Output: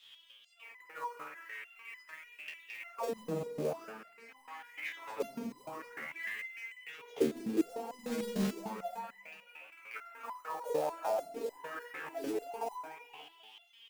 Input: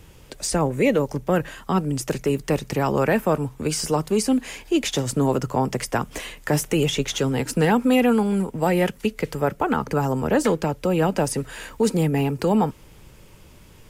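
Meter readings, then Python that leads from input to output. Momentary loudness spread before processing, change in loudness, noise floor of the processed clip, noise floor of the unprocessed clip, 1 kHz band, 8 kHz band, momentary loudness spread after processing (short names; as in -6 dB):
6 LU, -17.0 dB, -61 dBFS, -48 dBFS, -15.5 dB, -23.5 dB, 17 LU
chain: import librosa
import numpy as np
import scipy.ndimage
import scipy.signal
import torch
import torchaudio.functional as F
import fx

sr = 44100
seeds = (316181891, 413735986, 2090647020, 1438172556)

y = fx.rattle_buzz(x, sr, strikes_db=-25.0, level_db=-22.0)
y = fx.weighting(y, sr, curve='A')
y = fx.auto_swell(y, sr, attack_ms=567.0)
y = fx.rev_spring(y, sr, rt60_s=1.2, pass_ms=(46,), chirp_ms=70, drr_db=-1.5)
y = fx.auto_wah(y, sr, base_hz=210.0, top_hz=3600.0, q=8.7, full_db=-21.5, direction='down')
y = fx.quant_float(y, sr, bits=2)
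y = fx.echo_feedback(y, sr, ms=191, feedback_pct=50, wet_db=-13.0)
y = fx.resonator_held(y, sr, hz=6.7, low_hz=76.0, high_hz=1000.0)
y = y * 10.0 ** (17.0 / 20.0)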